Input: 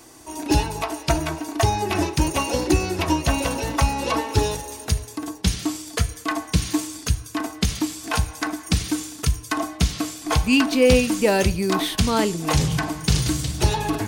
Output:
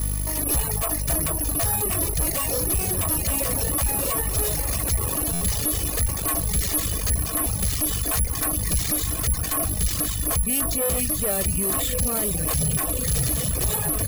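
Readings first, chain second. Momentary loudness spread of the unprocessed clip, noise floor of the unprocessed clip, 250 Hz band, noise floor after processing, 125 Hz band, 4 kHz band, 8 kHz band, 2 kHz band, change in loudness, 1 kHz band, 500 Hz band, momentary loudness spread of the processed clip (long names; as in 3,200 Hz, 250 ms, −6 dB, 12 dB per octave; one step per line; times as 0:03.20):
8 LU, −41 dBFS, −8.0 dB, −27 dBFS, −2.5 dB, −5.0 dB, +7.5 dB, −7.0 dB, +0.5 dB, −7.5 dB, −7.0 dB, 2 LU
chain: on a send: feedback delay with all-pass diffusion 1,152 ms, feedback 65%, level −12.5 dB
on the sum: speech leveller within 4 dB 0.5 s
mains hum 50 Hz, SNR 11 dB
bad sample-rate conversion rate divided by 4×, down none, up zero stuff
tube saturation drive 15 dB, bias 0.5
reverb reduction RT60 0.89 s
low-shelf EQ 390 Hz +6.5 dB
comb filter 1.7 ms, depth 40%
brickwall limiter −15 dBFS, peak gain reduction 6.5 dB
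buffer that repeats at 0:05.33, samples 512, times 6
level +2.5 dB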